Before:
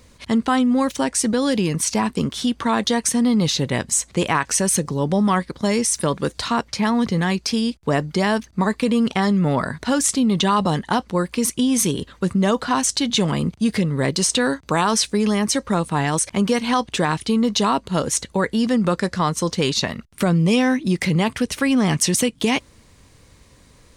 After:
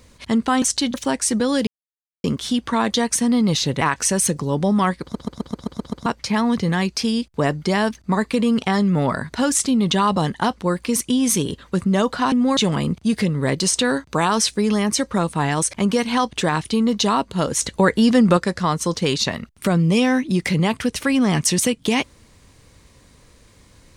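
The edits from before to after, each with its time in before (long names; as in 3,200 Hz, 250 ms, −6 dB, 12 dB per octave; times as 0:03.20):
0:00.62–0:00.87: swap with 0:12.81–0:13.13
0:01.60–0:02.17: silence
0:03.74–0:04.30: remove
0:05.51: stutter in place 0.13 s, 8 plays
0:18.18–0:18.93: clip gain +4.5 dB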